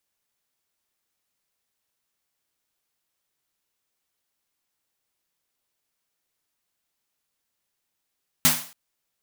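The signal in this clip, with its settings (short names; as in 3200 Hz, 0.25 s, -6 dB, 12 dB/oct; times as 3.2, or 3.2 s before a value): snare drum length 0.28 s, tones 160 Hz, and 250 Hz, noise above 540 Hz, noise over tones 10 dB, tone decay 0.33 s, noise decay 0.44 s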